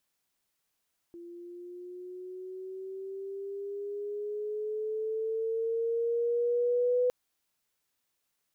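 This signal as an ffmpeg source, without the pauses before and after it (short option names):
-f lavfi -i "aevalsrc='pow(10,(-23+20*(t/5.96-1))/20)*sin(2*PI*342*5.96/(6.5*log(2)/12)*(exp(6.5*log(2)/12*t/5.96)-1))':d=5.96:s=44100"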